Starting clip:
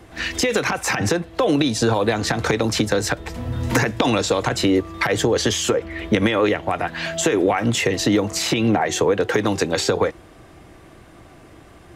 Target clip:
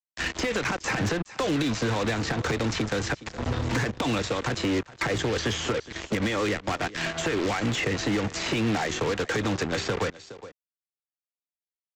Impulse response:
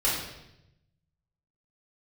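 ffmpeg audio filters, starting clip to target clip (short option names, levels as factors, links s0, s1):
-filter_complex "[0:a]aresample=16000,acrusher=bits=3:mix=0:aa=0.5,aresample=44100,dynaudnorm=f=140:g=3:m=3.98,aecho=1:1:416:0.075,acrossover=split=220|540|1100|2700[s0][s1][s2][s3][s4];[s0]acompressor=threshold=0.126:ratio=4[s5];[s1]acompressor=threshold=0.0794:ratio=4[s6];[s2]acompressor=threshold=0.0251:ratio=4[s7];[s3]acompressor=threshold=0.0891:ratio=4[s8];[s4]acompressor=threshold=0.0316:ratio=4[s9];[s5][s6][s7][s8][s9]amix=inputs=5:normalize=0,asoftclip=type=hard:threshold=0.2,volume=0.447"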